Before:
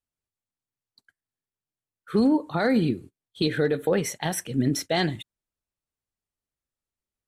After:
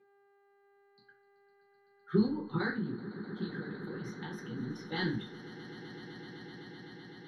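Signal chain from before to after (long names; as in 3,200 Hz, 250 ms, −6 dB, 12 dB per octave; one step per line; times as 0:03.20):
low-pass filter 6,800 Hz 12 dB per octave
high-shelf EQ 5,100 Hz +6.5 dB
harmonic and percussive parts rebalanced harmonic −17 dB
spectral tilt −2.5 dB per octave
0:02.70–0:04.92: downward compressor, threshold −35 dBFS, peak gain reduction 16 dB
phaser with its sweep stopped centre 2,400 Hz, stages 6
hum with harmonics 400 Hz, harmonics 11, −65 dBFS −9 dB per octave
echo that builds up and dies away 127 ms, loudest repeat 8, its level −18 dB
convolution reverb RT60 0.35 s, pre-delay 3 ms, DRR −4 dB
level −7.5 dB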